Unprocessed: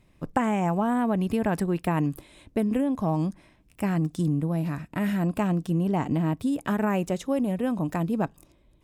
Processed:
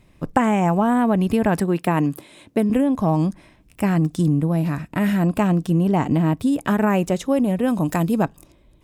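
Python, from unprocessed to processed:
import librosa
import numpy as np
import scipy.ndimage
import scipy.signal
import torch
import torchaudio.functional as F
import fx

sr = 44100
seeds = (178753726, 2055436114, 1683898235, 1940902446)

y = fx.highpass(x, sr, hz=150.0, slope=12, at=(1.6, 2.7))
y = fx.high_shelf(y, sr, hz=3900.0, db=8.5, at=(7.68, 8.23))
y = F.gain(torch.from_numpy(y), 6.5).numpy()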